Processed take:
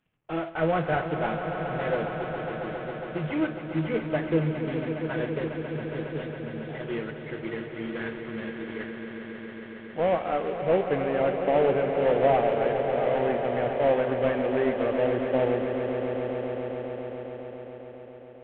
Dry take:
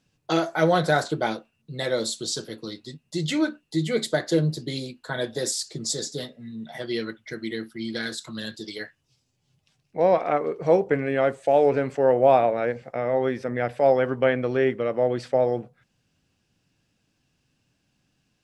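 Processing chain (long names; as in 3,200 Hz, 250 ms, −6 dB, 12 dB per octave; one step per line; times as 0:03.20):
variable-slope delta modulation 16 kbit/s
automatic gain control gain up to 4.5 dB
on a send: echo that builds up and dies away 137 ms, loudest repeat 5, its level −11 dB
on the sum: level −7.5 dB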